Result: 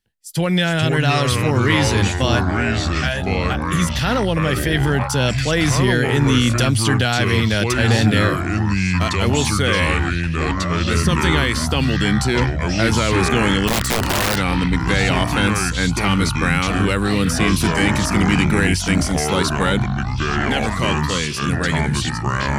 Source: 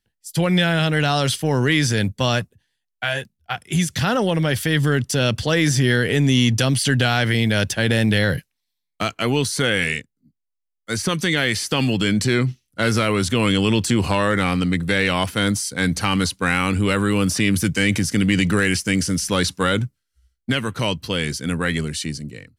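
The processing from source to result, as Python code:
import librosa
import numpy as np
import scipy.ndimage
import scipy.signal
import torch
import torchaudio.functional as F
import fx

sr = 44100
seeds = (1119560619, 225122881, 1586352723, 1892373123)

y = fx.echo_pitch(x, sr, ms=322, semitones=-5, count=3, db_per_echo=-3.0)
y = fx.overflow_wrap(y, sr, gain_db=12.0, at=(13.67, 14.36), fade=0.02)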